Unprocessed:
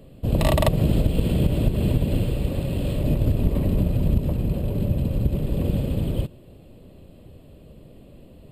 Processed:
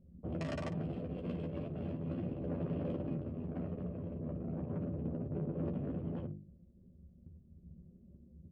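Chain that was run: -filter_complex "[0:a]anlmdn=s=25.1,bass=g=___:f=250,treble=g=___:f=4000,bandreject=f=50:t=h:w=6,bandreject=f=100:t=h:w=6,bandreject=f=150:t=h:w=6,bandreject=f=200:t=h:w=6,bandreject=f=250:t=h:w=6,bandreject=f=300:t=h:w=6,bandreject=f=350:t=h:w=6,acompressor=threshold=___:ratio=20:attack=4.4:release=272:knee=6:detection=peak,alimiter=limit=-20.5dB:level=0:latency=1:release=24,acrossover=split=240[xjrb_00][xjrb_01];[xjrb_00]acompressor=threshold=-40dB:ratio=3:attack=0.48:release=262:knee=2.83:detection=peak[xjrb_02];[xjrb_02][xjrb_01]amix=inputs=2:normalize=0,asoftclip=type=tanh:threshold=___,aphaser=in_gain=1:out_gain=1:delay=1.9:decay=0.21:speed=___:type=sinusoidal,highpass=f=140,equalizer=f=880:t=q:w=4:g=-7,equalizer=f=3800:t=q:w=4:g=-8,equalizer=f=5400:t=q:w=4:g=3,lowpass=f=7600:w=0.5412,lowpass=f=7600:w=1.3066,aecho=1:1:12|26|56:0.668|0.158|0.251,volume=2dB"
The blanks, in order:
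13, -6, -14dB, -35.5dB, 0.37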